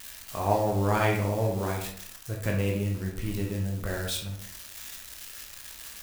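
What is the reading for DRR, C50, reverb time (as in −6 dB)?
−0.5 dB, 4.5 dB, 0.60 s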